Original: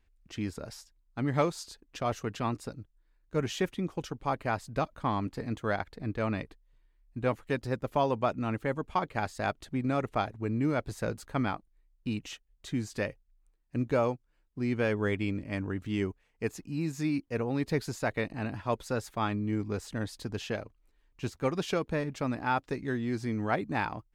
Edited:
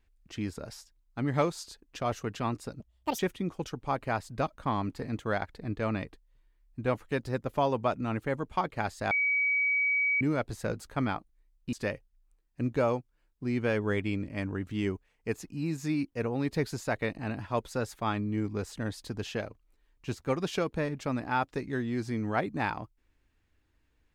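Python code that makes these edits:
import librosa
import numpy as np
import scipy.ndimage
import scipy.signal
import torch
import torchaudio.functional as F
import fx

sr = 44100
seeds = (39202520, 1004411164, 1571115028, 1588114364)

y = fx.edit(x, sr, fx.speed_span(start_s=2.8, length_s=0.77, speed=1.98),
    fx.bleep(start_s=9.49, length_s=1.1, hz=2270.0, db=-24.0),
    fx.cut(start_s=12.11, length_s=0.77), tone=tone)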